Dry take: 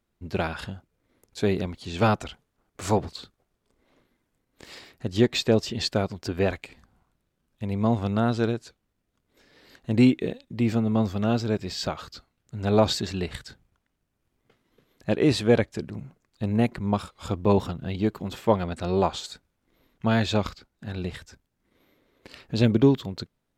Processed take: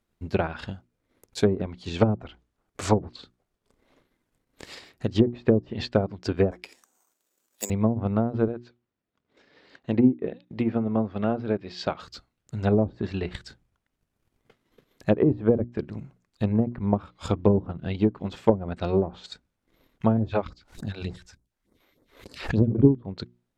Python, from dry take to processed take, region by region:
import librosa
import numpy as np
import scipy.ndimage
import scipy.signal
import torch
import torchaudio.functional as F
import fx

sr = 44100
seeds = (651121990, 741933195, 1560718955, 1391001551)

y = fx.chain(x, sr, fx.highpass(hz=300.0, slope=24),
    fx.resample_bad(factor=6, down='none', up='zero_stuff'), at=(6.51, 7.7))
y = fx.chain(y, sr, fx.highpass(hz=180.0, slope=6),
    fx.air_absorb(metres=140.0), at=(8.48, 12.0))
y = fx.chain(y, sr, fx.phaser_stages(stages=2, low_hz=110.0, high_hz=2900.0, hz=3.4, feedback_pct=20),
    fx.pre_swell(db_per_s=120.0), at=(20.17, 22.85))
y = fx.env_lowpass_down(y, sr, base_hz=410.0, full_db=-17.5)
y = fx.hum_notches(y, sr, base_hz=60, count=6)
y = fx.transient(y, sr, attack_db=5, sustain_db=-4)